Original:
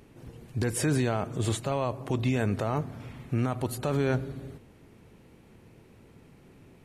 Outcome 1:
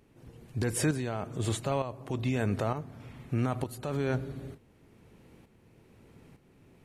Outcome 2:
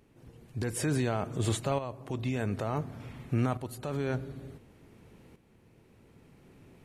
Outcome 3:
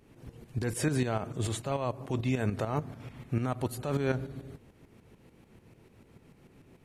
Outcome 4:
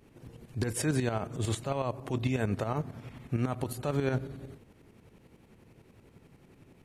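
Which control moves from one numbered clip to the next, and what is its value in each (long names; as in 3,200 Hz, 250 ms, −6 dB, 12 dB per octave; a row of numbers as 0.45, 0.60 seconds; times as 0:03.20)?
shaped tremolo, speed: 1.1, 0.56, 6.8, 11 Hertz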